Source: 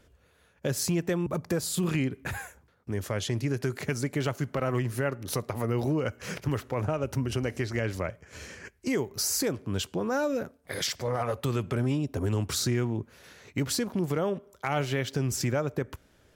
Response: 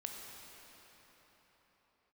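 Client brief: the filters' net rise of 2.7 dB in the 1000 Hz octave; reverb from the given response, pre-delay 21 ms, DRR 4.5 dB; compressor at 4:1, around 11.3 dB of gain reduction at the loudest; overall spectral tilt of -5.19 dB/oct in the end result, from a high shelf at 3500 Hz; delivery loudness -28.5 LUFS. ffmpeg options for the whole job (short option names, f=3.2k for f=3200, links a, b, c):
-filter_complex "[0:a]equalizer=f=1k:t=o:g=4.5,highshelf=f=3.5k:g=-8,acompressor=threshold=-37dB:ratio=4,asplit=2[a][b];[1:a]atrim=start_sample=2205,adelay=21[c];[b][c]afir=irnorm=-1:irlink=0,volume=-3.5dB[d];[a][d]amix=inputs=2:normalize=0,volume=11dB"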